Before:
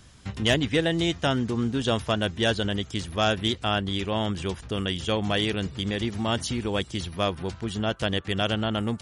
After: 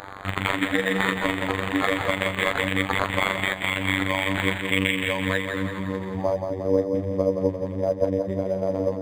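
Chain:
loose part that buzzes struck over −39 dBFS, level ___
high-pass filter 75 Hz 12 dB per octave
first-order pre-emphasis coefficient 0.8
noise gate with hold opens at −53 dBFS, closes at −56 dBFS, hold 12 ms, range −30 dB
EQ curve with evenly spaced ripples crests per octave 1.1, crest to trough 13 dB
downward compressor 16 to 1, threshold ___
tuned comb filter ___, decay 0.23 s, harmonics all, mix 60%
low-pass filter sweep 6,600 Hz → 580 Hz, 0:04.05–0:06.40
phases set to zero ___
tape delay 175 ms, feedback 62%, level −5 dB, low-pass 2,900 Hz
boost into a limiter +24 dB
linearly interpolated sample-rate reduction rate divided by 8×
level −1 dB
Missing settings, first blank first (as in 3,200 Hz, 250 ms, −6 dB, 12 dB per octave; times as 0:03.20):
−24 dBFS, −34 dBFS, 100 Hz, 95.5 Hz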